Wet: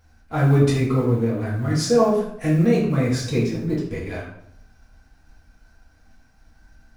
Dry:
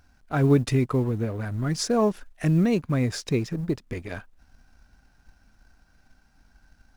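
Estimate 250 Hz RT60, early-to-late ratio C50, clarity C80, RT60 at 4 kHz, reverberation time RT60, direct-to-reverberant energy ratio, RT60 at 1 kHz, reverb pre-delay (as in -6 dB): 0.85 s, 3.5 dB, 6.5 dB, 0.55 s, 0.75 s, -7.5 dB, 0.70 s, 3 ms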